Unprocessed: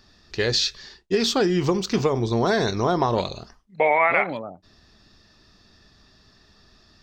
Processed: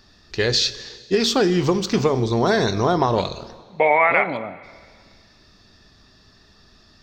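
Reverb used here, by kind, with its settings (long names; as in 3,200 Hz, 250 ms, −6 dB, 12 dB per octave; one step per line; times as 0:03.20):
dense smooth reverb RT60 1.9 s, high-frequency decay 1×, DRR 14.5 dB
level +2.5 dB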